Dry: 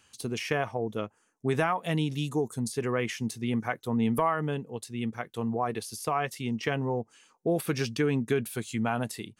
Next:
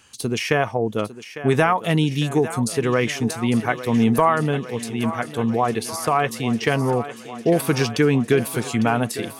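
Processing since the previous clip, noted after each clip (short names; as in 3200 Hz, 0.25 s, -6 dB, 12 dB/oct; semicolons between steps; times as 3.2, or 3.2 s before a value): thinning echo 0.852 s, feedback 73%, high-pass 230 Hz, level -13 dB; gain +9 dB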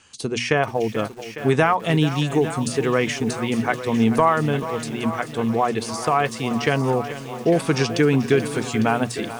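steep low-pass 9100 Hz 36 dB/oct; notches 60/120/180/240 Hz; lo-fi delay 0.435 s, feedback 35%, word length 6-bit, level -13 dB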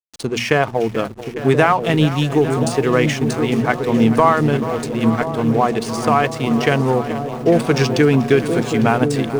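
de-hum 53.6 Hz, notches 4; backlash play -31 dBFS; dark delay 1.027 s, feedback 53%, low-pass 580 Hz, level -6 dB; gain +4 dB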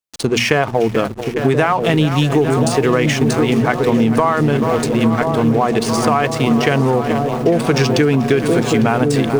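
in parallel at +1 dB: limiter -10.5 dBFS, peak gain reduction 9.5 dB; on the sum: compressor, threshold -10 dBFS, peak gain reduction 6 dB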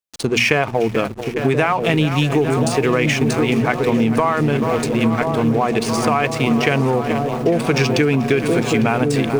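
dynamic EQ 2400 Hz, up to +7 dB, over -39 dBFS, Q 4.5; gain -2.5 dB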